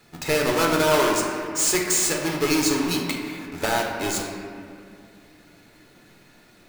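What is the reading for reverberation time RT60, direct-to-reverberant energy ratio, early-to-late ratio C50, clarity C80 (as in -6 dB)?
2.4 s, -0.5 dB, 2.5 dB, 3.5 dB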